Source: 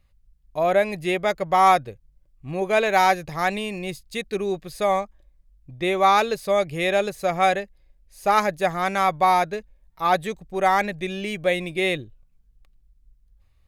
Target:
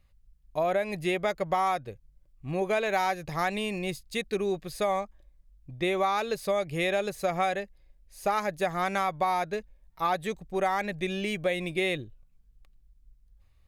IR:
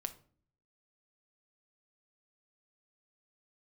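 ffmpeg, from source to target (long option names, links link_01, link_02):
-af "acompressor=threshold=-22dB:ratio=6,volume=-1.5dB"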